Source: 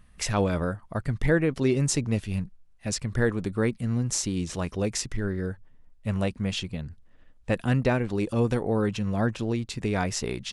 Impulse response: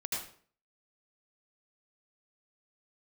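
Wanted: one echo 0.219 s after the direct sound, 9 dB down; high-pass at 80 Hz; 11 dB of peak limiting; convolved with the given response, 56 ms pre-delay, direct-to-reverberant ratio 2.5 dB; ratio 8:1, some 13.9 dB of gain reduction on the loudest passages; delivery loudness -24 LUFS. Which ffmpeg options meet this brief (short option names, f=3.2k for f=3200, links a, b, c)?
-filter_complex "[0:a]highpass=80,acompressor=threshold=-33dB:ratio=8,alimiter=level_in=6dB:limit=-24dB:level=0:latency=1,volume=-6dB,aecho=1:1:219:0.355,asplit=2[a][b];[1:a]atrim=start_sample=2205,adelay=56[c];[b][c]afir=irnorm=-1:irlink=0,volume=-5.5dB[d];[a][d]amix=inputs=2:normalize=0,volume=14dB"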